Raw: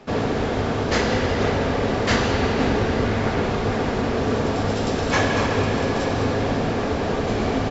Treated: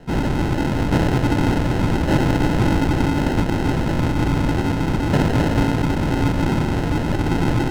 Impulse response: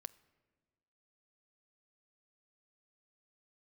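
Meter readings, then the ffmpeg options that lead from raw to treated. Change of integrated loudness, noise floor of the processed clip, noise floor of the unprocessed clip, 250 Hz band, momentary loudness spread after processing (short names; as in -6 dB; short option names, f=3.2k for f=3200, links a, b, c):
+2.0 dB, -22 dBFS, -24 dBFS, +4.5 dB, 3 LU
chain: -af "lowpass=f=2.3k:t=q:w=0.5098,lowpass=f=2.3k:t=q:w=0.6013,lowpass=f=2.3k:t=q:w=0.9,lowpass=f=2.3k:t=q:w=2.563,afreqshift=-2700,acrusher=samples=38:mix=1:aa=0.000001,aemphasis=mode=reproduction:type=50kf,volume=3.5dB"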